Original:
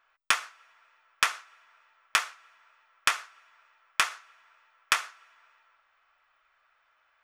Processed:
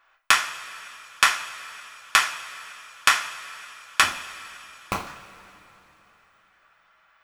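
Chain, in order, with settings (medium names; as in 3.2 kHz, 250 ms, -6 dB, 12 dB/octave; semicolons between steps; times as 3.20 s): 4.02–5.07 s: median filter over 25 samples; two-slope reverb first 0.34 s, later 3.4 s, from -18 dB, DRR 1 dB; trim +5 dB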